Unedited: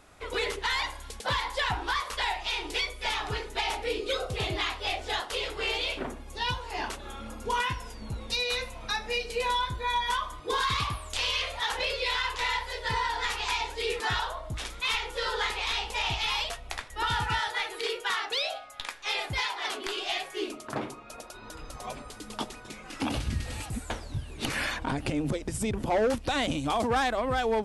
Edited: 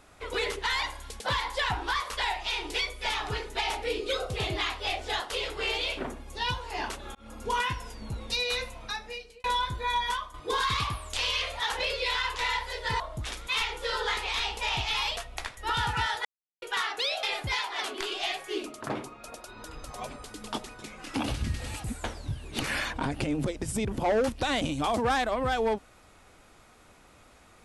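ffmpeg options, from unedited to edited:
-filter_complex "[0:a]asplit=8[a][b][c][d][e][f][g][h];[a]atrim=end=7.15,asetpts=PTS-STARTPTS,afade=t=out:st=7.146:d=0.004:c=hsin[i];[b]atrim=start=7.15:end=9.44,asetpts=PTS-STARTPTS,afade=t=in:d=0.37:c=qsin,afade=t=out:st=1.48:d=0.81[j];[c]atrim=start=9.44:end=10.34,asetpts=PTS-STARTPTS,afade=t=in:d=0.004:c=hsin,afade=t=out:st=0.61:d=0.29:silence=0.298538[k];[d]atrim=start=10.34:end=13.002,asetpts=PTS-STARTPTS,afade=t=in:d=0.004:c=hsin:silence=0.298538[l];[e]atrim=start=14.328:end=17.58,asetpts=PTS-STARTPTS,afade=t=out:st=3.248:d=0.004:c=hsin[m];[f]atrim=start=17.58:end=17.95,asetpts=PTS-STARTPTS,volume=0[n];[g]atrim=start=17.95:end=18.562,asetpts=PTS-STARTPTS,afade=t=in:d=0.004:c=hsin[o];[h]atrim=start=19.088[p];[i][j][k][l]concat=n=4:v=0:a=1[q];[m][n][o]concat=n=3:v=0:a=1[r];[q][r]acrossfade=d=0.004:c1=hsin:c2=hsin[s];[s][p]acrossfade=d=0.004:c1=hsin:c2=hsin"

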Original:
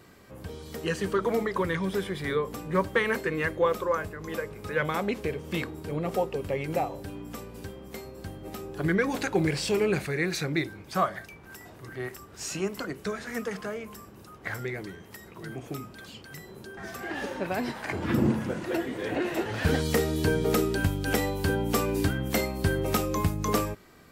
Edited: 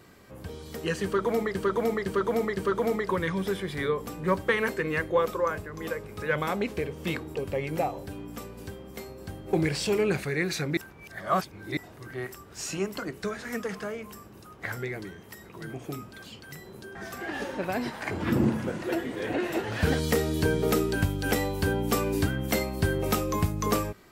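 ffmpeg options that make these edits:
-filter_complex "[0:a]asplit=8[a][b][c][d][e][f][g][h];[a]atrim=end=1.552[i];[b]atrim=start=1.038:end=1.552[j];[c]atrim=start=1.038:end=1.552[k];[d]atrim=start=1.038:end=5.822[l];[e]atrim=start=6.318:end=8.502[m];[f]atrim=start=9.348:end=10.592[n];[g]atrim=start=10.588:end=11.592,asetpts=PTS-STARTPTS,areverse[o];[h]atrim=start=11.588[p];[i][j]acrossfade=d=0.004:c1=hsin:c2=hsin[q];[q][k]acrossfade=d=0.004:c1=hsin:c2=hsin[r];[r][l]acrossfade=d=0.004:c1=hsin:c2=hsin[s];[s][m]acrossfade=d=0.004:c1=hsin:c2=hsin[t];[t][n]acrossfade=d=0.004:c1=hsin:c2=hsin[u];[u][o]acrossfade=d=0.004:c1=hsin:c2=hsin[v];[v][p]acrossfade=d=0.004:c1=hsin:c2=hsin"

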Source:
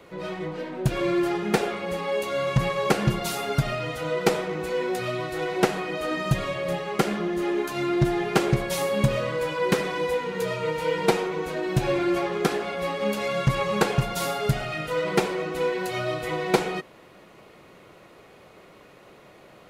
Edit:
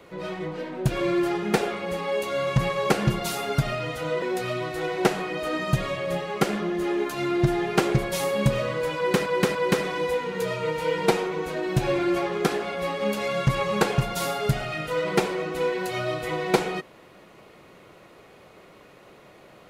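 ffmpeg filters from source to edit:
-filter_complex "[0:a]asplit=4[a][b][c][d];[a]atrim=end=4.222[e];[b]atrim=start=4.798:end=9.842[f];[c]atrim=start=9.548:end=9.842[g];[d]atrim=start=9.548[h];[e][f]acrossfade=d=0.004:c1=hsin:c2=hsin[i];[i][g]acrossfade=d=0.004:c1=hsin:c2=hsin[j];[j][h]acrossfade=d=0.004:c1=hsin:c2=hsin"

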